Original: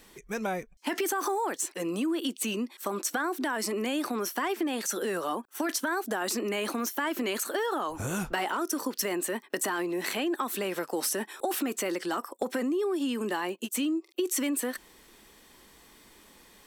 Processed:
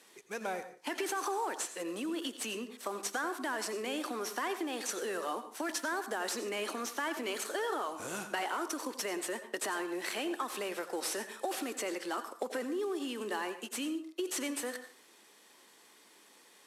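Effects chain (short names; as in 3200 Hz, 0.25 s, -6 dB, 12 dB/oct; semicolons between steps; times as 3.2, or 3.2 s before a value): CVSD 64 kbps; HPF 320 Hz 12 dB/oct; reverb RT60 0.40 s, pre-delay 77 ms, DRR 10 dB; gain -4.5 dB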